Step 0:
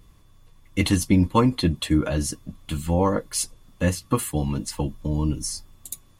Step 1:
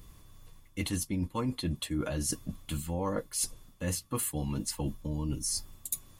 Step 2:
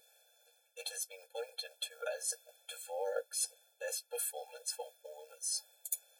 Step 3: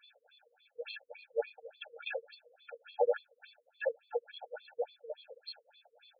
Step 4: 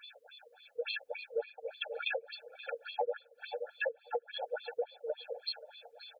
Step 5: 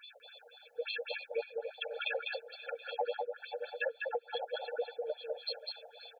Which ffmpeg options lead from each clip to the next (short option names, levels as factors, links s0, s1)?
-af "highshelf=f=7500:g=8.5,areverse,acompressor=threshold=0.0316:ratio=6,areverse"
-af "acrusher=bits=8:mode=log:mix=0:aa=0.000001,afftfilt=real='re*eq(mod(floor(b*sr/1024/450),2),1)':imag='im*eq(mod(floor(b*sr/1024/450),2),1)':win_size=1024:overlap=0.75,volume=0.891"
-af "afftfilt=real='re*between(b*sr/1024,320*pow(3500/320,0.5+0.5*sin(2*PI*3.5*pts/sr))/1.41,320*pow(3500/320,0.5+0.5*sin(2*PI*3.5*pts/sr))*1.41)':imag='im*between(b*sr/1024,320*pow(3500/320,0.5+0.5*sin(2*PI*3.5*pts/sr))/1.41,320*pow(3500/320,0.5+0.5*sin(2*PI*3.5*pts/sr))*1.41)':win_size=1024:overlap=0.75,volume=3.98"
-af "aecho=1:1:528|1056:0.1|0.015,acompressor=threshold=0.00794:ratio=6,volume=2.99"
-af "aecho=1:1:200:0.668,volume=0.891"